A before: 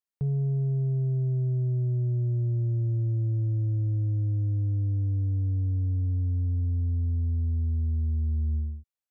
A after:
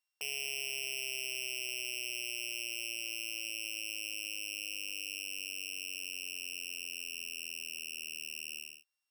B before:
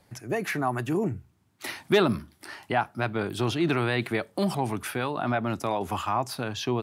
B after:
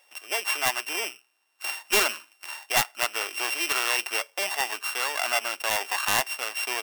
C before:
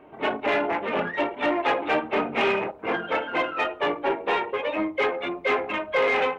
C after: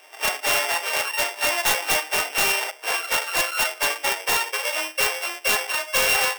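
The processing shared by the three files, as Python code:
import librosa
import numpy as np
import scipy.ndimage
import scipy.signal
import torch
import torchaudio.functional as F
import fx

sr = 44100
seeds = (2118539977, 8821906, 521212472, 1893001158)

y = np.r_[np.sort(x[:len(x) // 16 * 16].reshape(-1, 16), axis=1).ravel(), x[len(x) // 16 * 16:]]
y = scipy.signal.sosfilt(scipy.signal.bessel(4, 880.0, 'highpass', norm='mag', fs=sr, output='sos'), y)
y = (np.mod(10.0 ** (13.5 / 20.0) * y + 1.0, 2.0) - 1.0) / 10.0 ** (13.5 / 20.0)
y = F.gain(torch.from_numpy(y), 5.0).numpy()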